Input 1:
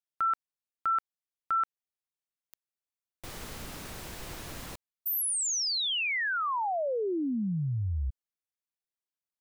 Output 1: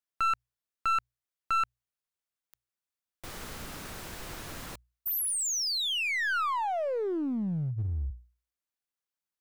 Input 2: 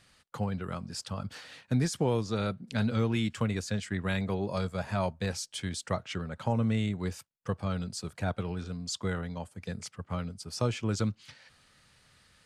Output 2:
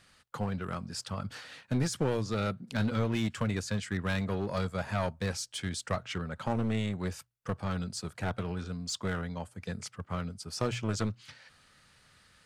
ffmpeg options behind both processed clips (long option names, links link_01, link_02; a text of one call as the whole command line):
ffmpeg -i in.wav -af "equalizer=frequency=1400:width_type=o:width=0.73:gain=3,bandreject=frequency=60:width_type=h:width=6,bandreject=frequency=120:width_type=h:width=6,aeval=exprs='clip(val(0),-1,0.0355)':channel_layout=same" out.wav